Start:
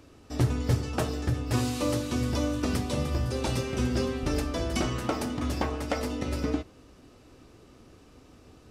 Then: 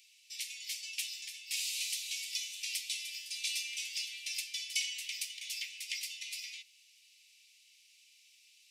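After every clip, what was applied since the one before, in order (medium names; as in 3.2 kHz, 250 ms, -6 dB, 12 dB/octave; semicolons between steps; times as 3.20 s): steep high-pass 2.2 kHz 72 dB/octave; trim +3 dB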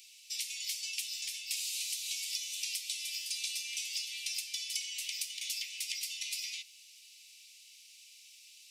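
compression 12:1, threshold -41 dBFS, peak gain reduction 13 dB; tilt shelf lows -9.5 dB, about 1.5 kHz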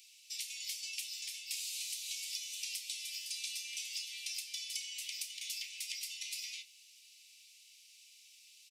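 doubling 31 ms -13 dB; trim -4 dB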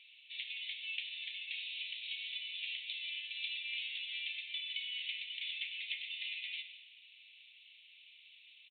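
algorithmic reverb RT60 1.3 s, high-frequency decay 1×, pre-delay 15 ms, DRR 9 dB; resampled via 8 kHz; trim +6 dB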